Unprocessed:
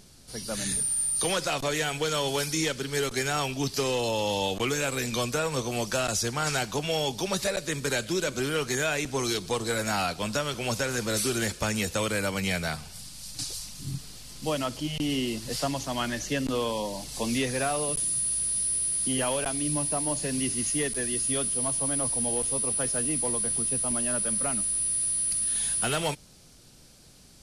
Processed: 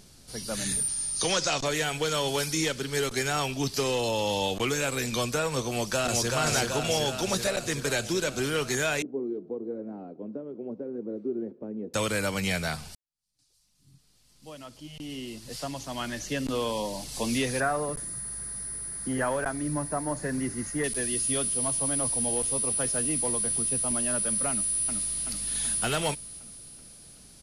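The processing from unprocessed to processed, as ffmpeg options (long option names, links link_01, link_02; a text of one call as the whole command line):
ffmpeg -i in.wav -filter_complex "[0:a]asettb=1/sr,asplit=3[link_01][link_02][link_03];[link_01]atrim=end=0.884[link_04];[link_02]atrim=start=0.88:end=1.65,asetpts=PTS-STARTPTS,afade=type=in:duration=0.004:curve=qsin,afade=type=out:start_time=0.766:duration=0.004:curve=qsin,lowpass=frequency=6300:width_type=q:width=2.5[link_05];[link_03]atrim=start=1.646[link_06];[link_04][link_05]acrossfade=duration=0.004:curve1=hsin:curve2=qsin[link_07];[link_07][link_06]acrossfade=duration=0.004:curve1=qsin:curve2=hsin,asplit=2[link_08][link_09];[link_09]afade=type=in:start_time=5.67:duration=0.01,afade=type=out:start_time=6.32:duration=0.01,aecho=0:1:380|760|1140|1520|1900|2280|2660|3040|3420|3800|4180|4560:0.749894|0.524926|0.367448|0.257214|0.18005|0.126035|0.0882243|0.061757|0.0432299|0.0302609|0.0211827|0.0148279[link_10];[link_08][link_10]amix=inputs=2:normalize=0,asettb=1/sr,asplit=3[link_11][link_12][link_13];[link_11]atrim=end=9.024[link_14];[link_12]atrim=start=9.02:end=11.94,asetpts=PTS-STARTPTS,afade=type=in:duration=0.004:curve=qsin,afade=type=out:start_time=2.916:duration=0.004:curve=qsin,asuperpass=centerf=320:order=4:qfactor=1.4[link_15];[link_13]atrim=start=11.936[link_16];[link_14][link_15]acrossfade=duration=0.004:curve1=hsin:curve2=qsin[link_17];[link_17][link_16]acrossfade=duration=0.004:curve1=qsin:curve2=hsin,asettb=1/sr,asplit=3[link_18][link_19][link_20];[link_18]atrim=end=17.604[link_21];[link_19]atrim=start=17.6:end=20.84,asetpts=PTS-STARTPTS,afade=type=in:duration=0.004:curve=qsin,afade=type=out:start_time=3.236:duration=0.004:curve=qsin,highshelf=frequency=2200:width_type=q:width=3:gain=-8.5[link_22];[link_20]atrim=start=20.836[link_23];[link_21][link_22]acrossfade=duration=0.004:curve1=hsin:curve2=qsin[link_24];[link_24][link_23]acrossfade=duration=0.004:curve1=qsin:curve2=hsin,asplit=2[link_25][link_26];[link_26]afade=type=in:start_time=24.5:duration=0.01,afade=type=out:start_time=25.25:duration=0.01,aecho=0:1:380|760|1140|1520|1900|2280|2660|3040|3420:0.707946|0.424767|0.25486|0.152916|0.0917498|0.0550499|0.0330299|0.019818|0.0118908[link_27];[link_25][link_27]amix=inputs=2:normalize=0,asplit=2[link_28][link_29];[link_28]atrim=end=12.95,asetpts=PTS-STARTPTS,afade=type=out:start_time=12.946:duration=0.004:curve=hsin[link_30];[link_29]atrim=start=12.95,asetpts=PTS-STARTPTS,afade=type=in:duration=3.84:curve=qua[link_31];[link_30][link_31]concat=n=2:v=0:a=1" out.wav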